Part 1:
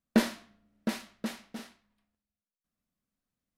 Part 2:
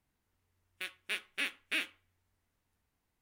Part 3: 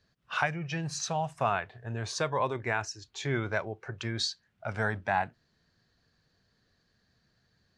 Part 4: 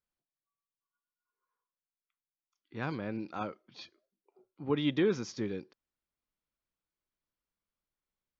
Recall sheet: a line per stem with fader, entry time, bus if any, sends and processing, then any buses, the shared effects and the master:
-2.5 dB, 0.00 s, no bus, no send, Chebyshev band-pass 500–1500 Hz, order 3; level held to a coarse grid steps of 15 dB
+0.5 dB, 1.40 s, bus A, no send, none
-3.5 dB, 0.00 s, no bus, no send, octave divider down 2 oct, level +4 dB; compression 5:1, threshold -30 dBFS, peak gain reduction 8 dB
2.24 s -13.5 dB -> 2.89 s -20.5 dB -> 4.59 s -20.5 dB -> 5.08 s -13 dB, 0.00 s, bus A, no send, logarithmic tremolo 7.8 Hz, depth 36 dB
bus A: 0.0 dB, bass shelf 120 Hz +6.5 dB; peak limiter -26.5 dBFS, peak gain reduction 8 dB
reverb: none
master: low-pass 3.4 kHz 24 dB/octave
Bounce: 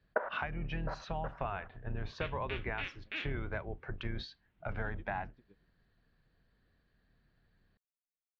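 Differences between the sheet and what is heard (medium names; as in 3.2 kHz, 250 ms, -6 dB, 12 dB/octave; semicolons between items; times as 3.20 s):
stem 1 -2.5 dB -> +5.5 dB; stem 4 -13.5 dB -> -24.0 dB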